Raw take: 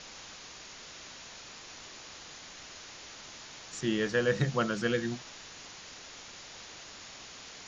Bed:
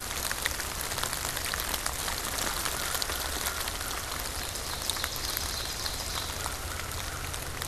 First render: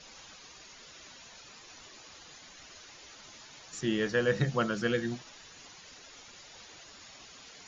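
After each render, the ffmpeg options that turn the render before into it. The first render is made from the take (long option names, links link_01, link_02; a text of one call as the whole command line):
ffmpeg -i in.wav -af "afftdn=noise_reduction=10:noise_floor=-49" out.wav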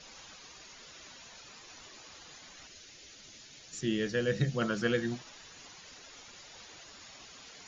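ffmpeg -i in.wav -filter_complex "[0:a]asettb=1/sr,asplit=3[link_01][link_02][link_03];[link_01]atrim=end=2.674[link_04];[link_02]atrim=start=2.67:end=4.62,asetpts=PTS-STARTPTS,afade=type=in:duration=0.004:curve=qsin,afade=type=out:start_time=1.946:duration=0.004:curve=qsin,equalizer=frequency=1000:width=1.1:gain=-11.5[link_05];[link_03]atrim=start=4.616[link_06];[link_04][link_05]acrossfade=duration=0.004:curve1=hsin:curve2=qsin[link_07];[link_07][link_06]acrossfade=duration=0.004:curve1=qsin:curve2=hsin" out.wav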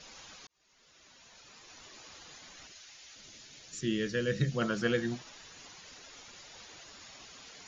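ffmpeg -i in.wav -filter_complex "[0:a]asettb=1/sr,asplit=3[link_01][link_02][link_03];[link_01]atrim=end=2.724[link_04];[link_02]atrim=start=2.72:end=3.16,asetpts=PTS-STARTPTS,afade=type=in:duration=0.004:curve=qsin,afade=type=out:start_time=0.436:duration=0.004:curve=qsin,lowshelf=frequency=590:width_type=q:width=1.5:gain=-9[link_05];[link_03]atrim=start=3.156[link_06];[link_04][link_05]acrossfade=duration=0.004:curve1=hsin:curve2=qsin[link_07];[link_07][link_06]acrossfade=duration=0.004:curve1=qsin:curve2=hsin,asettb=1/sr,asplit=3[link_08][link_09][link_10];[link_08]atrim=end=3.734[link_11];[link_09]atrim=start=3.73:end=4.52,asetpts=PTS-STARTPTS,afade=type=in:duration=0.004:curve=qsin,afade=type=out:start_time=0.786:duration=0.004:curve=qsin,equalizer=frequency=770:width_type=o:width=0.4:gain=-15[link_12];[link_10]atrim=start=4.516[link_13];[link_11][link_12]acrossfade=duration=0.004:curve1=hsin:curve2=qsin[link_14];[link_14][link_13]acrossfade=duration=0.004:curve1=qsin:curve2=hsin,asplit=2[link_15][link_16];[link_15]atrim=end=0.47,asetpts=PTS-STARTPTS,afade=type=out:start_time=0.466:duration=0.004:curve=hsin[link_17];[link_16]atrim=start=0.47,asetpts=PTS-STARTPTS,afade=type=in:duration=1.57[link_18];[link_17][link_18]concat=n=2:v=0:a=1" out.wav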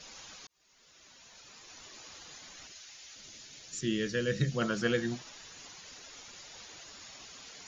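ffmpeg -i in.wav -af "highshelf=frequency=6200:gain=6" out.wav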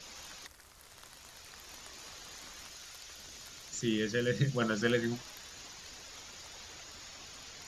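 ffmpeg -i in.wav -i bed.wav -filter_complex "[1:a]volume=-24dB[link_01];[0:a][link_01]amix=inputs=2:normalize=0" out.wav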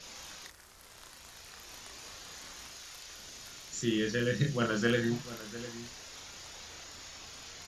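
ffmpeg -i in.wav -filter_complex "[0:a]asplit=2[link_01][link_02];[link_02]adelay=34,volume=-4.5dB[link_03];[link_01][link_03]amix=inputs=2:normalize=0,asplit=2[link_04][link_05];[link_05]adelay=699.7,volume=-14dB,highshelf=frequency=4000:gain=-15.7[link_06];[link_04][link_06]amix=inputs=2:normalize=0" out.wav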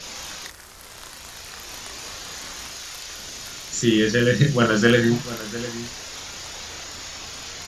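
ffmpeg -i in.wav -af "volume=12dB" out.wav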